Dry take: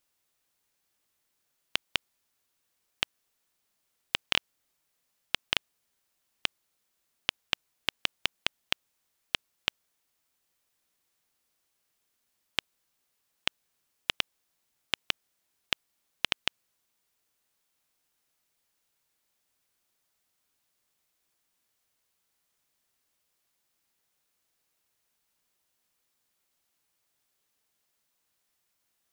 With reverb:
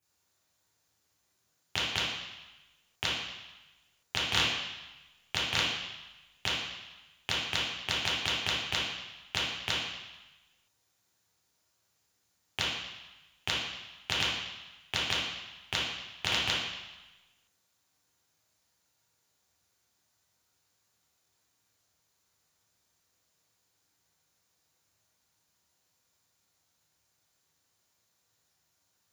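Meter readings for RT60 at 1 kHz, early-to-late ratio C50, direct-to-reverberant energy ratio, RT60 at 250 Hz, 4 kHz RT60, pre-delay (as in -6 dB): 1.1 s, -1.0 dB, -10.0 dB, 1.0 s, 1.1 s, 3 ms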